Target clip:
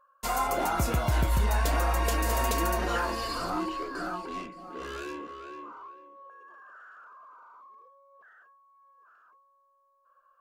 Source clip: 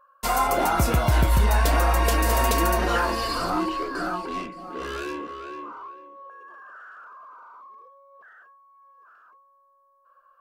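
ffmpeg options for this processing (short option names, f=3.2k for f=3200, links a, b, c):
-af "equalizer=f=6.9k:w=7.8:g=4.5,volume=-6dB"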